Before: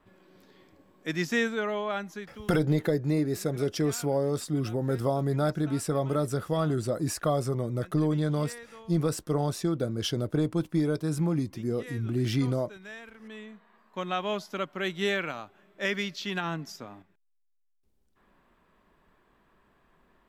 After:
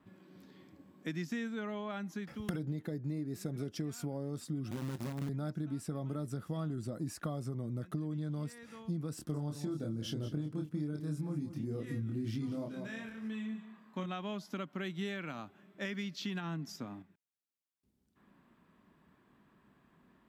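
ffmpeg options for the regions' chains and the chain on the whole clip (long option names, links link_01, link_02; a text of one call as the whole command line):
ffmpeg -i in.wav -filter_complex "[0:a]asettb=1/sr,asplit=3[link_01][link_02][link_03];[link_01]atrim=end=4.714[link_04];[link_02]atrim=start=4.71:end=5.29,asetpts=PTS-STARTPTS,afade=type=in:duration=0.004:curve=qsin,afade=type=out:start_time=0.576:duration=0.004:curve=qsin,acrossover=split=230|3800[link_05][link_06][link_07];[link_05]acompressor=threshold=-32dB:ratio=4[link_08];[link_06]acompressor=threshold=-34dB:ratio=4[link_09];[link_07]acompressor=threshold=-57dB:ratio=4[link_10];[link_08][link_09][link_10]amix=inputs=3:normalize=0,acrusher=bits=6:dc=4:mix=0:aa=0.000001,asplit=2[link_11][link_12];[link_12]adelay=21,volume=-12.5dB[link_13];[link_11][link_13]amix=inputs=2:normalize=0,atrim=end_sample=25578[link_14];[link_03]atrim=start=5.286[link_15];[link_04][link_14]acrossfade=duration=0.004:curve1=hsin:curve2=qsin[link_16];[link_16][link_15]acrossfade=duration=0.004:curve1=qsin:curve2=hsin,asettb=1/sr,asplit=3[link_17][link_18][link_19];[link_17]atrim=end=9.154[link_20];[link_18]atrim=start=9.15:end=14.06,asetpts=PTS-STARTPTS,afade=type=in:duration=0.004:curve=qsin,afade=type=out:start_time=4.906:duration=0.004:curve=qsin,asplit=2[link_21][link_22];[link_22]adelay=27,volume=-3dB[link_23];[link_21][link_23]amix=inputs=2:normalize=0,atrim=end_sample=216531,aecho=1:1:189|378|567:0.224|0.0515|0.0118,atrim=end_sample=216531[link_24];[link_19]atrim=start=14.056[link_25];[link_20][link_24]acrossfade=duration=0.004:curve1=hsin:curve2=qsin[link_26];[link_26][link_25]acrossfade=duration=0.004:curve1=qsin:curve2=hsin,highpass=94,lowshelf=frequency=340:width_type=q:width=1.5:gain=6.5,acompressor=threshold=-32dB:ratio=6,volume=-3.5dB" out.wav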